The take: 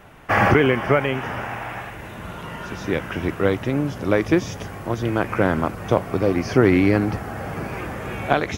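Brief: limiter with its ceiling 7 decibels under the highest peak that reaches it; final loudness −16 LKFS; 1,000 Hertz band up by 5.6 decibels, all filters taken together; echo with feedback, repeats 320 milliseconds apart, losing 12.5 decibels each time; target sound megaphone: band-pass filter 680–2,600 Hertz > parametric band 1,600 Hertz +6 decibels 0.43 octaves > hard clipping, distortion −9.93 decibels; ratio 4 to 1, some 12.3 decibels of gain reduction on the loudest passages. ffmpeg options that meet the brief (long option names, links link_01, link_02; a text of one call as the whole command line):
ffmpeg -i in.wav -af "equalizer=frequency=1000:width_type=o:gain=8,acompressor=threshold=-24dB:ratio=4,alimiter=limit=-16dB:level=0:latency=1,highpass=680,lowpass=2600,equalizer=frequency=1600:width_type=o:width=0.43:gain=6,aecho=1:1:320|640|960:0.237|0.0569|0.0137,asoftclip=type=hard:threshold=-28dB,volume=16.5dB" out.wav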